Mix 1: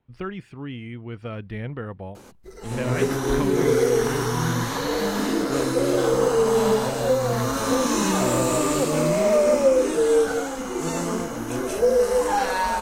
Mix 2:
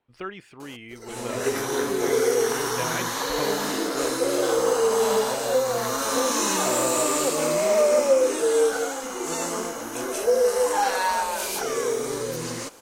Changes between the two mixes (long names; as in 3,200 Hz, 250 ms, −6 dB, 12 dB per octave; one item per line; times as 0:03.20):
background: entry −1.55 s
master: add bass and treble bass −15 dB, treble +4 dB